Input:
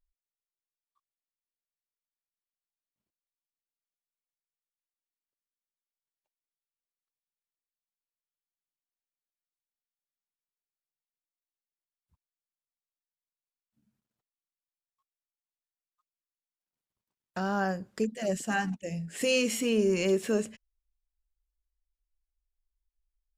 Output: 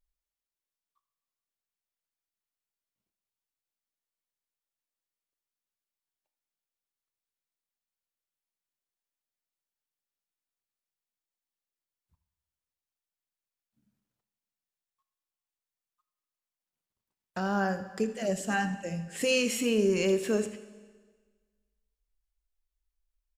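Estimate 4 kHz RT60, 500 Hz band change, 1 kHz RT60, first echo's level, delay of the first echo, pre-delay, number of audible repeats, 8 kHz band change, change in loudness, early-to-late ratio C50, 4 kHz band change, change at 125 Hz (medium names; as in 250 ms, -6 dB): 1.4 s, +0.5 dB, 1.5 s, -16.0 dB, 81 ms, 20 ms, 1, +0.5 dB, 0.0 dB, 11.5 dB, +0.5 dB, 0.0 dB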